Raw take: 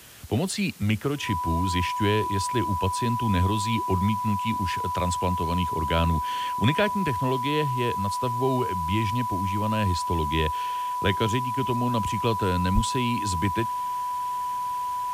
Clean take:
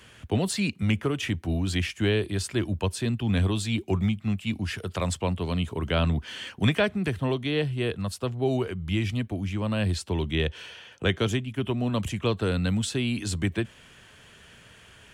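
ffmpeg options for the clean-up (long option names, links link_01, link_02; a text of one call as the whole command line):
ffmpeg -i in.wav -filter_complex "[0:a]bandreject=frequency=990:width=30,asplit=3[link_01][link_02][link_03];[link_01]afade=type=out:start_time=12.74:duration=0.02[link_04];[link_02]highpass=frequency=140:width=0.5412,highpass=frequency=140:width=1.3066,afade=type=in:start_time=12.74:duration=0.02,afade=type=out:start_time=12.86:duration=0.02[link_05];[link_03]afade=type=in:start_time=12.86:duration=0.02[link_06];[link_04][link_05][link_06]amix=inputs=3:normalize=0,afwtdn=0.004" out.wav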